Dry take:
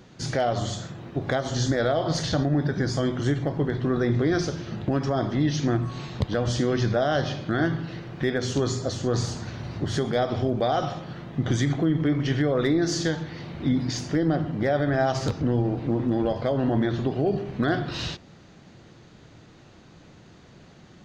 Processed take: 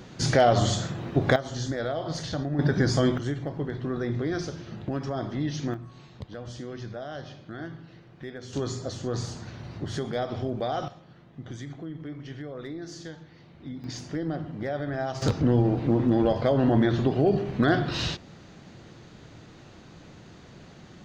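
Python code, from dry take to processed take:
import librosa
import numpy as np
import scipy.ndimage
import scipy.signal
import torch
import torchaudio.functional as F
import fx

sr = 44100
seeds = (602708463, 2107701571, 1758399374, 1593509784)

y = fx.gain(x, sr, db=fx.steps((0.0, 5.0), (1.36, -6.5), (2.59, 2.5), (3.18, -6.0), (5.74, -14.0), (8.53, -5.5), (10.88, -15.0), (13.84, -7.5), (15.22, 2.0)))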